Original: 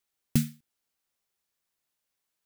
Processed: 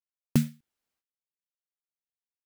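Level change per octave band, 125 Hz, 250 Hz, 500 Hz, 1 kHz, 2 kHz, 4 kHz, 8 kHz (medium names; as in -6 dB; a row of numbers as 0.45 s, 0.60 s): +1.5 dB, +2.0 dB, +6.5 dB, +7.0 dB, +0.5 dB, -1.5 dB, -3.5 dB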